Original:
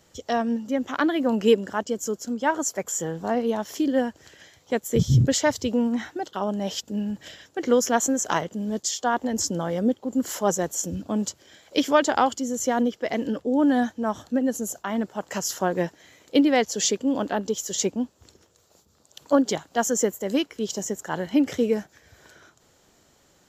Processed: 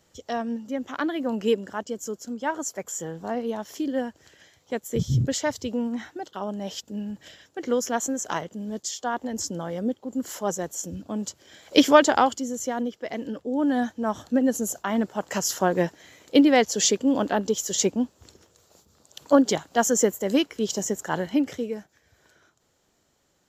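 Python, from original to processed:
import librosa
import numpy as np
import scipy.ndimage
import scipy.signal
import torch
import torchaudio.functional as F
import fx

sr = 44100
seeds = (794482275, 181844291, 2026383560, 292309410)

y = fx.gain(x, sr, db=fx.line((11.22, -4.5), (11.79, 6.0), (12.75, -5.5), (13.35, -5.5), (14.4, 2.0), (21.16, 2.0), (21.7, -8.5)))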